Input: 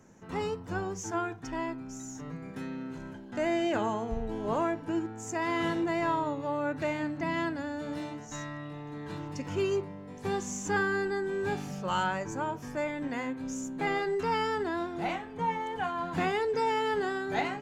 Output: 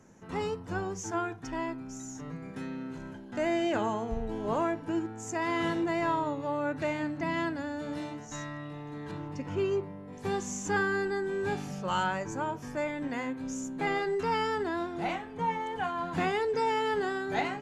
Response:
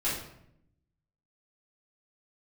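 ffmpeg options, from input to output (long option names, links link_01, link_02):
-filter_complex "[0:a]asettb=1/sr,asplit=3[link_01][link_02][link_03];[link_01]atrim=end=9.114[link_04];[link_02]atrim=start=9.11:end=10.13,asetpts=PTS-STARTPTS,afade=type=in:duration=0.004:curve=qsin,afade=type=out:start_time=1.016:duration=0.004:curve=qsin,highshelf=frequency=3800:gain=-11[link_05];[link_03]atrim=start=10.126[link_06];[link_04][link_05]acrossfade=duration=0.004:curve1=hsin:curve2=qsin[link_07];[link_07][link_06]acrossfade=duration=0.004:curve1=qsin:curve2=hsin" -ar 44100 -c:a mp2 -b:a 128k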